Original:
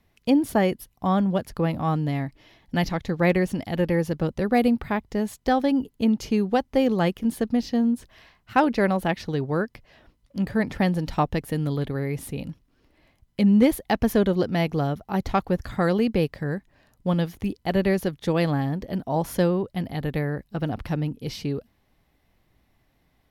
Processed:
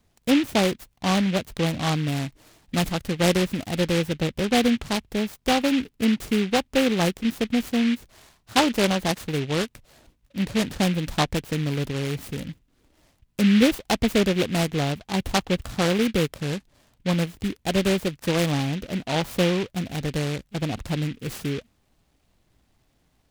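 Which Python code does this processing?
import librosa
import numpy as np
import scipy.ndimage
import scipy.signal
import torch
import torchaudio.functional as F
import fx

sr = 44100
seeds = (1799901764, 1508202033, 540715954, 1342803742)

y = fx.noise_mod_delay(x, sr, seeds[0], noise_hz=2400.0, depth_ms=0.13)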